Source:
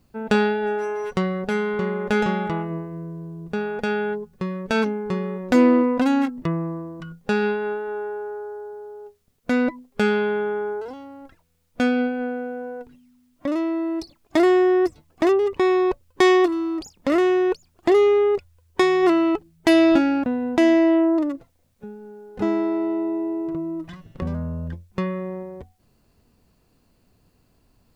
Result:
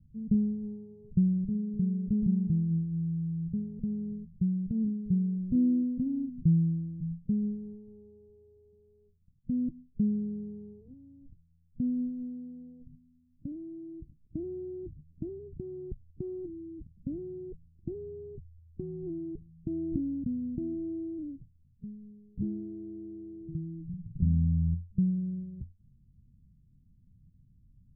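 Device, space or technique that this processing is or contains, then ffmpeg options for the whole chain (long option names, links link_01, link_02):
the neighbour's flat through the wall: -af "lowpass=frequency=180:width=0.5412,lowpass=frequency=180:width=1.3066,equalizer=frequency=140:width_type=o:width=0.77:gain=3,volume=2.5dB"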